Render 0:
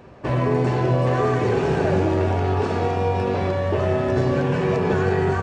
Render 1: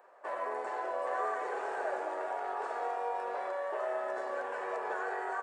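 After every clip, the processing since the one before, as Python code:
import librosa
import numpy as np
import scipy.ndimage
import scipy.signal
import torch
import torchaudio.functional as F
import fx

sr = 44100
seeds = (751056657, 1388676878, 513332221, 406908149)

y = scipy.signal.sosfilt(scipy.signal.butter(4, 580.0, 'highpass', fs=sr, output='sos'), x)
y = fx.band_shelf(y, sr, hz=3800.0, db=-11.5, octaves=1.7)
y = y * librosa.db_to_amplitude(-8.0)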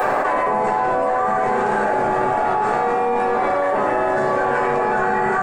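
y = fx.octave_divider(x, sr, octaves=1, level_db=-3.0)
y = fx.room_shoebox(y, sr, seeds[0], volume_m3=300.0, walls='furnished', distance_m=3.7)
y = fx.env_flatten(y, sr, amount_pct=100)
y = y * librosa.db_to_amplitude(4.0)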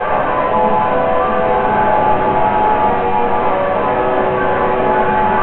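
y = fx.cvsd(x, sr, bps=16000)
y = y + 10.0 ** (-8.0 / 20.0) * np.pad(y, (int(766 * sr / 1000.0), 0))[:len(y)]
y = fx.room_shoebox(y, sr, seeds[1], volume_m3=530.0, walls='furnished', distance_m=5.2)
y = y * librosa.db_to_amplitude(-3.0)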